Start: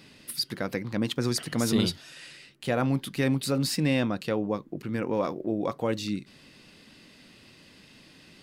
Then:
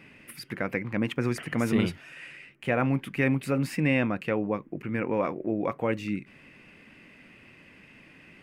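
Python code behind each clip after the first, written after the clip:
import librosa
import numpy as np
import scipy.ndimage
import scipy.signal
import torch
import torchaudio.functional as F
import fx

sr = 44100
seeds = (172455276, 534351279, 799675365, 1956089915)

y = fx.high_shelf_res(x, sr, hz=3100.0, db=-9.0, q=3.0)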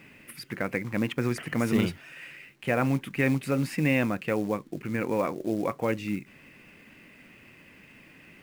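y = fx.quant_companded(x, sr, bits=6)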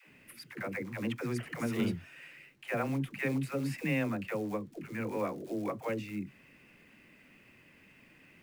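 y = fx.dispersion(x, sr, late='lows', ms=86.0, hz=380.0)
y = y * 10.0 ** (-7.0 / 20.0)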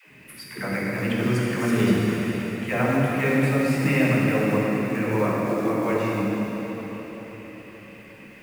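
y = fx.rev_plate(x, sr, seeds[0], rt60_s=4.8, hf_ratio=0.8, predelay_ms=0, drr_db=-5.5)
y = y * 10.0 ** (6.0 / 20.0)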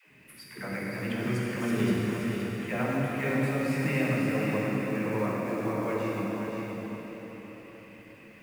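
y = x + 10.0 ** (-6.0 / 20.0) * np.pad(x, (int(522 * sr / 1000.0), 0))[:len(x)]
y = y * 10.0 ** (-7.5 / 20.0)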